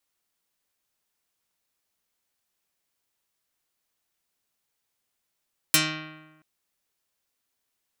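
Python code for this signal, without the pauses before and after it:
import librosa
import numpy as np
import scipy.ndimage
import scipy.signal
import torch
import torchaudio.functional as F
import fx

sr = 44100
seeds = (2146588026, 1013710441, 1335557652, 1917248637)

y = fx.pluck(sr, length_s=0.68, note=51, decay_s=1.17, pick=0.36, brightness='dark')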